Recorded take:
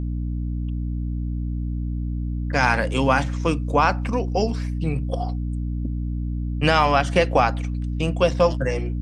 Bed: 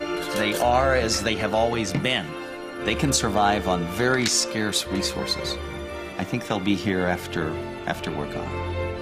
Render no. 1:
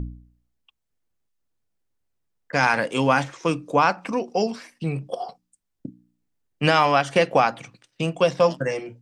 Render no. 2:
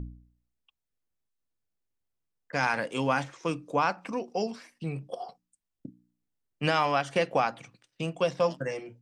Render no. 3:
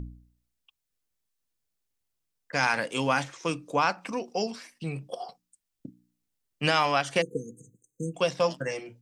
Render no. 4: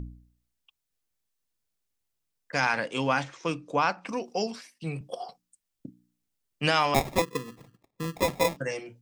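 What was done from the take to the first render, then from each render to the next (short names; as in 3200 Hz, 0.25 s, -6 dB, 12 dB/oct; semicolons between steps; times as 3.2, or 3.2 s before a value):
de-hum 60 Hz, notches 5
gain -7.5 dB
7.21–8.15 spectral delete 500–6200 Hz; high shelf 2300 Hz +7.5 dB
2.6–4.09 air absorption 67 m; 4.61–5.01 three-band expander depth 40%; 6.94–8.57 sample-rate reducer 1500 Hz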